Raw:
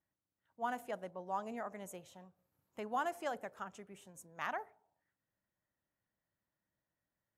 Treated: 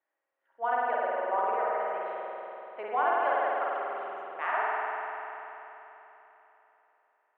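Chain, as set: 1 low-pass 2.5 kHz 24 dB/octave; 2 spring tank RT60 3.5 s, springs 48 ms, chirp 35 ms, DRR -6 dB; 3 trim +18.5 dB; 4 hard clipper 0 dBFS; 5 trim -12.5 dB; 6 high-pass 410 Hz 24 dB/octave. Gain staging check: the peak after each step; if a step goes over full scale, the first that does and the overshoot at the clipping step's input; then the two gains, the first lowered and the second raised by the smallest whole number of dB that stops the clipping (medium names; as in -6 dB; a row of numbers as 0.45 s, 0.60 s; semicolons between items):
-25.0 dBFS, -21.0 dBFS, -2.5 dBFS, -2.5 dBFS, -15.0 dBFS, -15.5 dBFS; nothing clips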